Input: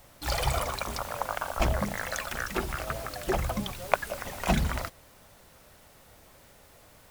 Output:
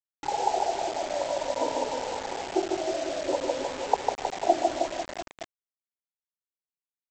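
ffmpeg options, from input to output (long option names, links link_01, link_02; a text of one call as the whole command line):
ffmpeg -i in.wav -filter_complex "[0:a]afftfilt=real='re*pow(10,15/40*sin(2*PI*(1*log(max(b,1)*sr/1024/100)/log(2)-(-0.55)*(pts-256)/sr)))':imag='im*pow(10,15/40*sin(2*PI*(1*log(max(b,1)*sr/1024/100)/log(2)-(-0.55)*(pts-256)/sr)))':win_size=1024:overlap=0.75,afftdn=noise_reduction=34:noise_floor=-50,asplit=2[link_01][link_02];[link_02]aeval=exprs='(mod(2.51*val(0)+1,2)-1)/2.51':channel_layout=same,volume=-10dB[link_03];[link_01][link_03]amix=inputs=2:normalize=0,afftfilt=real='re*between(b*sr/4096,250,1000)':imag='im*between(b*sr/4096,250,1000)':win_size=4096:overlap=0.75,aecho=1:1:150|315|496.5|696.2|915.8:0.631|0.398|0.251|0.158|0.1,aresample=16000,acrusher=bits=5:mix=0:aa=0.000001,aresample=44100" out.wav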